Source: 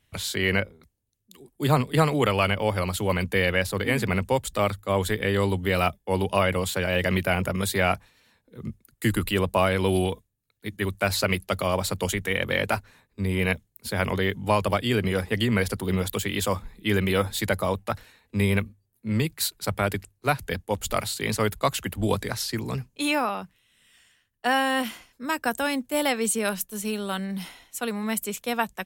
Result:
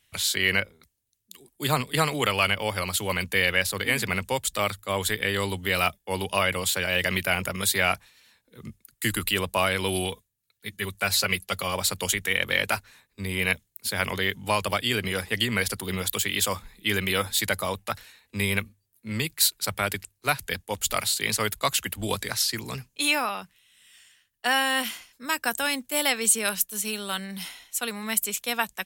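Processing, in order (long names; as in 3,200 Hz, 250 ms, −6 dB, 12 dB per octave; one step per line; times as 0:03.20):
tilt shelving filter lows −6.5 dB, about 1,300 Hz
0:10.11–0:11.75: notch comb filter 310 Hz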